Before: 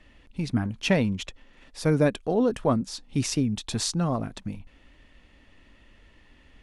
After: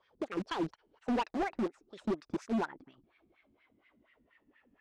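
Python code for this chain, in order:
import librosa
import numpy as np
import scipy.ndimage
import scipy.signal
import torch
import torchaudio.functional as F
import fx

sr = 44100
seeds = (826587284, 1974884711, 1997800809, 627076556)

p1 = fx.speed_glide(x, sr, from_pct=181, to_pct=95)
p2 = fx.wah_lfo(p1, sr, hz=4.2, low_hz=210.0, high_hz=2100.0, q=3.4)
p3 = fx.quant_dither(p2, sr, seeds[0], bits=6, dither='none')
p4 = p2 + (p3 * 10.0 ** (-8.0 / 20.0))
p5 = np.clip(10.0 ** (27.5 / 20.0) * p4, -1.0, 1.0) / 10.0 ** (27.5 / 20.0)
y = fx.air_absorb(p5, sr, metres=78.0)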